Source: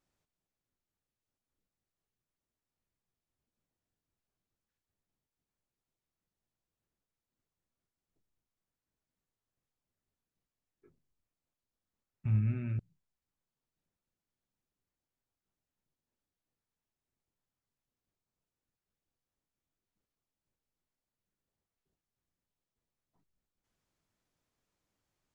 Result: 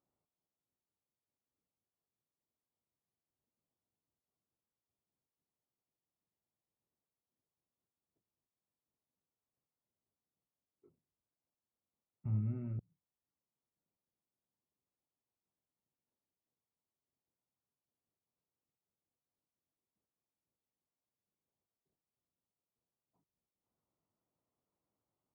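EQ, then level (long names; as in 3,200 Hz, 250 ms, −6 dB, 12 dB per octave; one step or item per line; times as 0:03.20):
Savitzky-Golay smoothing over 65 samples
high-pass filter 62 Hz
low-shelf EQ 120 Hz −6.5 dB
−2.0 dB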